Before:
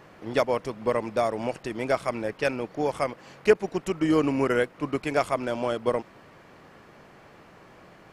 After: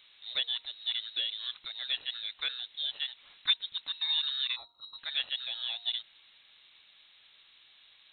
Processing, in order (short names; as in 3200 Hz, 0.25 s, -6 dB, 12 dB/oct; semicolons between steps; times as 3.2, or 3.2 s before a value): spectral gain 4.56–4.99, 220–2600 Hz -29 dB; inverted band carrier 4000 Hz; de-hum 236 Hz, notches 4; gain -9 dB